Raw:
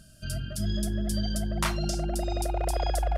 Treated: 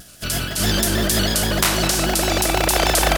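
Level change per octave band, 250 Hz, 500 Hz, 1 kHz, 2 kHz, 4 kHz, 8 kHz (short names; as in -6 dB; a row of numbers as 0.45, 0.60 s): +9.0, +11.5, +11.5, +18.0, +17.5, +17.5 dB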